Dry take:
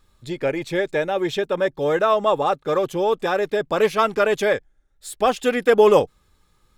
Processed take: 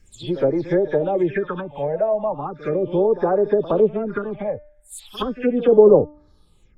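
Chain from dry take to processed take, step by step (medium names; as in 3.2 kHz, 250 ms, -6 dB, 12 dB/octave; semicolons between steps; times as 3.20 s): delay that grows with frequency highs early, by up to 137 ms; low-pass that closes with the level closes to 530 Hz, closed at -16.5 dBFS; de-hum 298.3 Hz, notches 28; phase shifter stages 6, 0.37 Hz, lowest notch 320–2900 Hz; reverse echo 68 ms -16 dB; trim +4.5 dB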